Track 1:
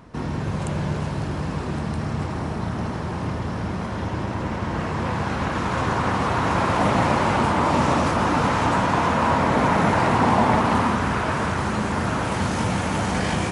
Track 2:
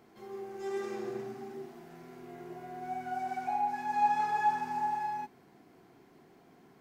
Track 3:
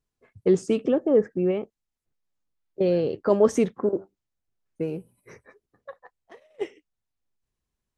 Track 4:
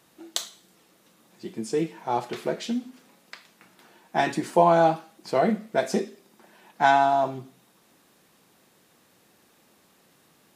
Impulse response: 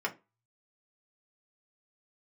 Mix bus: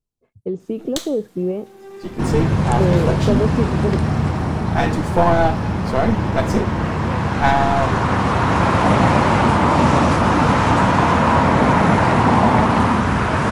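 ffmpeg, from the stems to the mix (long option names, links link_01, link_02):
-filter_complex "[0:a]adelay=2050,volume=0.5dB[link_01];[1:a]asoftclip=type=tanh:threshold=-32.5dB,adelay=1200,volume=-5.5dB[link_02];[2:a]acrossover=split=3000[link_03][link_04];[link_04]acompressor=threshold=-58dB:ratio=4:attack=1:release=60[link_05];[link_03][link_05]amix=inputs=2:normalize=0,equalizer=frequency=1800:width_type=o:width=1.1:gain=-12,acompressor=threshold=-20dB:ratio=4,volume=-2.5dB[link_06];[3:a]aeval=exprs='if(lt(val(0),0),0.447*val(0),val(0))':channel_layout=same,adelay=600,volume=1.5dB[link_07];[link_01][link_02][link_06][link_07]amix=inputs=4:normalize=0,bass=frequency=250:gain=3,treble=frequency=4000:gain=-2,dynaudnorm=framelen=150:gausssize=11:maxgain=7.5dB"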